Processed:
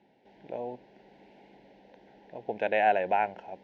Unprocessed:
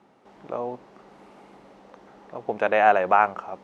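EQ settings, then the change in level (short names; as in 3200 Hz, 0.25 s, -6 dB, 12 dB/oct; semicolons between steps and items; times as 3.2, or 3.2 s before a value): Butterworth band-stop 1200 Hz, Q 1.6; air absorption 260 m; high shelf 2400 Hz +11 dB; -5.5 dB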